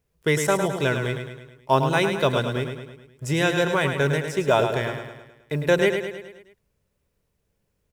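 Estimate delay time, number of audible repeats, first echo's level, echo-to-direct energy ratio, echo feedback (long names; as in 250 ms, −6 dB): 106 ms, 6, −7.0 dB, −5.5 dB, 53%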